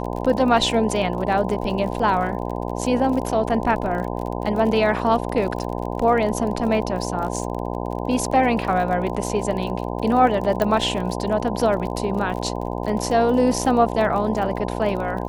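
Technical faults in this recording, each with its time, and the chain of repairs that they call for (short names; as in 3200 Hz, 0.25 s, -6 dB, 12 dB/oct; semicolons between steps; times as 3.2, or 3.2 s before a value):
buzz 60 Hz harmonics 17 -27 dBFS
crackle 40/s -29 dBFS
10.62 pop -9 dBFS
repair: de-click; de-hum 60 Hz, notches 17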